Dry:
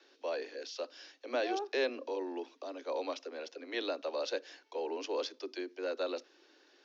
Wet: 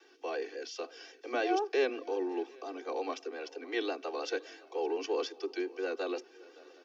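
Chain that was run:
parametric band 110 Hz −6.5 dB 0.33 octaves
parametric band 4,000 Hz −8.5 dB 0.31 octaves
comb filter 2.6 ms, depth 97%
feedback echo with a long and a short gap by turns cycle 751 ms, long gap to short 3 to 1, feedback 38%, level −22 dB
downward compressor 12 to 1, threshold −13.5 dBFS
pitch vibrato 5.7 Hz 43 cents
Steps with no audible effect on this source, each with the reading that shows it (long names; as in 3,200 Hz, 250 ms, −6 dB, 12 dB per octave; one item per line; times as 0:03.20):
parametric band 110 Hz: nothing at its input below 210 Hz
downward compressor, threshold −13.5 dBFS: peak of its input −18.0 dBFS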